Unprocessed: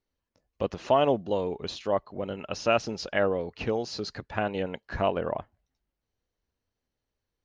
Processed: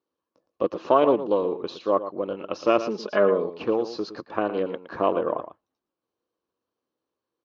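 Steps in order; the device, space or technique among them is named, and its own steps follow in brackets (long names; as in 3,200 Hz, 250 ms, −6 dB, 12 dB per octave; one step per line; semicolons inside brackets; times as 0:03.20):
full-range speaker at full volume (highs frequency-modulated by the lows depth 0.27 ms; loudspeaker in its box 200–6,500 Hz, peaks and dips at 330 Hz +9 dB, 500 Hz +6 dB, 1,100 Hz +10 dB, 2,000 Hz −8 dB)
0:02.80–0:03.47: comb filter 4.8 ms, depth 70%
high-shelf EQ 6,000 Hz −10 dB
single-tap delay 114 ms −12 dB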